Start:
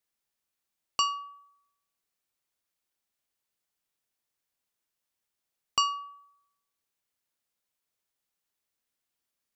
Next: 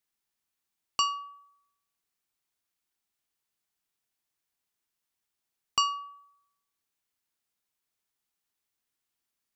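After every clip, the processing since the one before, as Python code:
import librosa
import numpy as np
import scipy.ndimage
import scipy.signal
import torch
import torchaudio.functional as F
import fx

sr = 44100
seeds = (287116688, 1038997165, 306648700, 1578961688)

y = fx.peak_eq(x, sr, hz=550.0, db=-9.0, octaves=0.23)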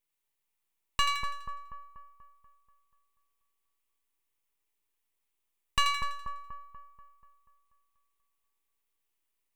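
y = fx.fixed_phaser(x, sr, hz=1000.0, stages=8)
y = np.maximum(y, 0.0)
y = fx.echo_split(y, sr, split_hz=1300.0, low_ms=242, high_ms=83, feedback_pct=52, wet_db=-5.0)
y = y * 10.0 ** (5.0 / 20.0)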